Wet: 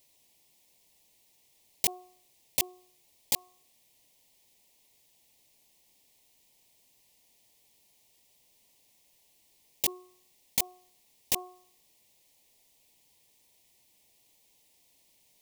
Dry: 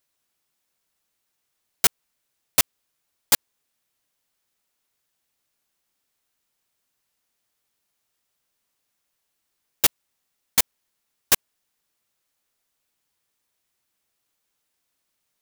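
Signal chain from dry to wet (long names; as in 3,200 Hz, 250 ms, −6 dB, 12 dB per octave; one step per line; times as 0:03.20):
Butterworth band-reject 1,400 Hz, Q 1.3
hum removal 363.8 Hz, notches 4
compressor whose output falls as the input rises −22 dBFS, ratio −0.5
level +1 dB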